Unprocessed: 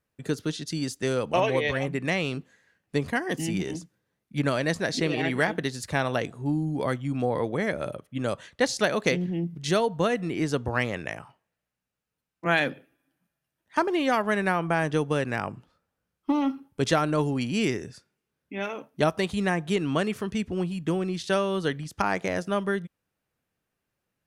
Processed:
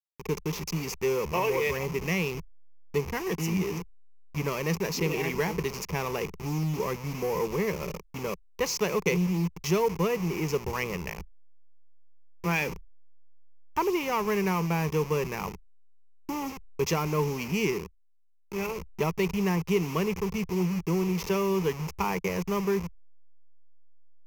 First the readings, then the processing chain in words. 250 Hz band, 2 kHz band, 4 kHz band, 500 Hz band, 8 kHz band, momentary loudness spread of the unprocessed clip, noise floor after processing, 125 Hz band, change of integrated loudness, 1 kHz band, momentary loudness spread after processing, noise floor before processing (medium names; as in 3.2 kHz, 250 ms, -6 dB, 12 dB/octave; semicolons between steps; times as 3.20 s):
-2.5 dB, -5.0 dB, -4.0 dB, -1.5 dB, +1.5 dB, 8 LU, -54 dBFS, 0.0 dB, -2.0 dB, -2.5 dB, 9 LU, -84 dBFS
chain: send-on-delta sampling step -32.5 dBFS; power-law waveshaper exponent 0.7; rippled EQ curve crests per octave 0.79, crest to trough 13 dB; trim -8.5 dB